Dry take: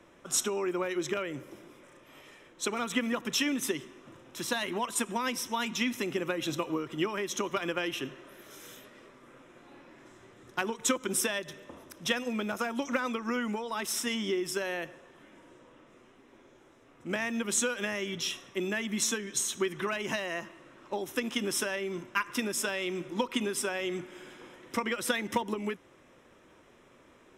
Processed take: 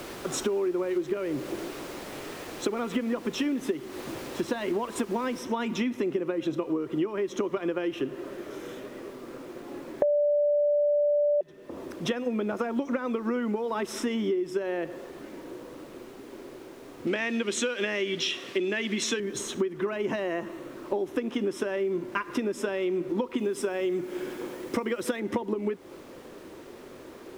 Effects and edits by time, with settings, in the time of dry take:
0:05.39: noise floor change −42 dB −54 dB
0:10.02–0:11.41: beep over 586 Hz −9 dBFS
0:17.07–0:19.20: meter weighting curve D
0:20.27–0:20.72: notch filter 4,900 Hz, Q 9.7
0:23.38–0:25.20: high-shelf EQ 4,900 Hz +8.5 dB
whole clip: low-pass filter 1,500 Hz 6 dB per octave; parametric band 380 Hz +9 dB 1.3 octaves; downward compressor 6 to 1, threshold −34 dBFS; level +8 dB

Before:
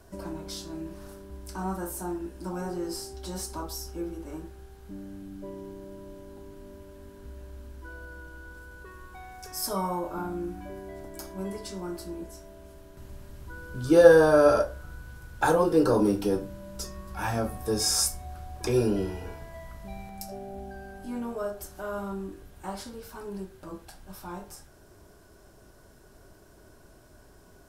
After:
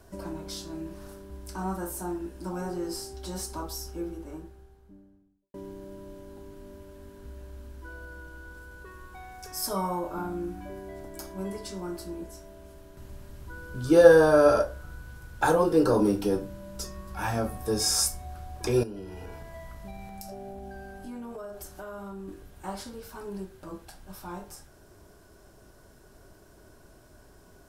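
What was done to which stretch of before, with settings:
0:03.84–0:05.54: fade out and dull
0:18.83–0:22.28: downward compressor, threshold −36 dBFS

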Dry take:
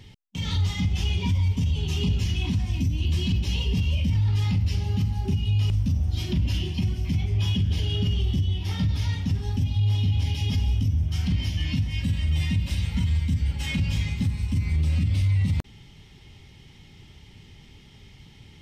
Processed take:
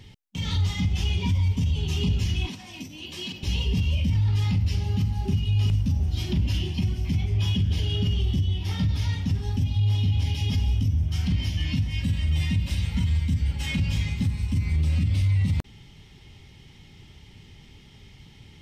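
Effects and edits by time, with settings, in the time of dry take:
0:02.47–0:03.43: high-pass filter 370 Hz
0:04.82–0:05.44: delay throw 370 ms, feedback 65%, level −11 dB

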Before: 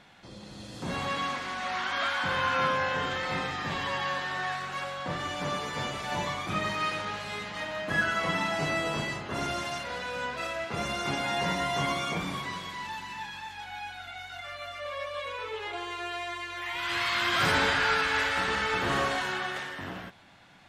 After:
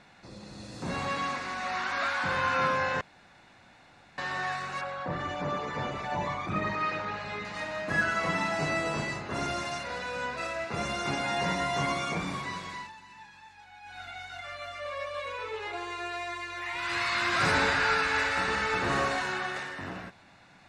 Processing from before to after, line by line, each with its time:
0:03.01–0:04.18: fill with room tone
0:04.81–0:07.45: spectral envelope exaggerated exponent 1.5
0:12.75–0:14.00: duck −11 dB, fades 0.17 s
whole clip: low-pass filter 10,000 Hz 24 dB per octave; notch filter 3,200 Hz, Q 5.6

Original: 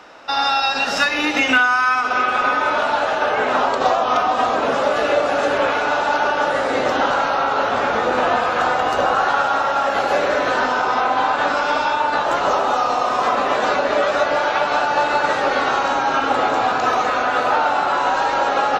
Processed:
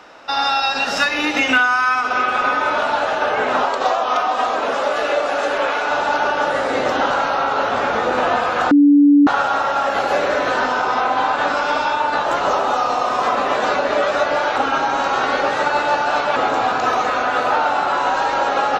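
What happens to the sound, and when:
0:03.65–0:05.91: parametric band 110 Hz −12 dB 2.3 octaves
0:08.71–0:09.27: beep over 288 Hz −7 dBFS
0:14.56–0:16.36: reverse

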